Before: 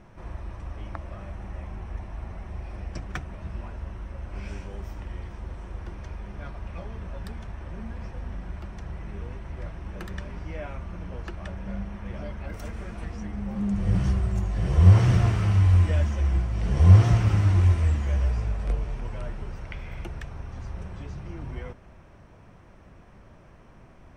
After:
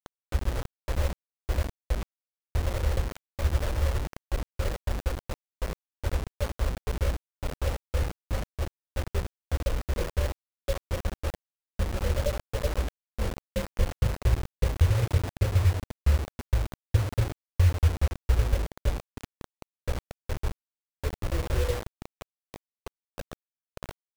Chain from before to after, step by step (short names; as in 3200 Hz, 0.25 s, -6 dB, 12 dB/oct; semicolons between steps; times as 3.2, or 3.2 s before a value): random spectral dropouts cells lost 77%; compressor 16:1, threshold -29 dBFS, peak gain reduction 18.5 dB; EQ curve 110 Hz 0 dB, 160 Hz -12 dB, 270 Hz -12 dB, 550 Hz +15 dB, 790 Hz -15 dB; outdoor echo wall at 270 m, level -20 dB; reverb, pre-delay 35 ms, DRR 9.5 dB; treble ducked by the level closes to 790 Hz, closed at -30.5 dBFS; LPF 2100 Hz 24 dB/oct; low shelf 290 Hz +10.5 dB; notches 50/100 Hz; requantised 6-bit, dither none; gain +3 dB